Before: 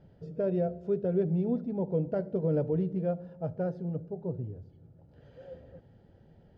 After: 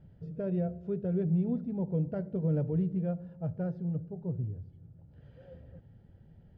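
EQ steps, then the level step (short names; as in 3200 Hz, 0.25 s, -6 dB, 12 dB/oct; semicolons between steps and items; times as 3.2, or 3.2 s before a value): tone controls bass +13 dB, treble -11 dB; tilt shelf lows -4.5 dB, about 1200 Hz; -4.5 dB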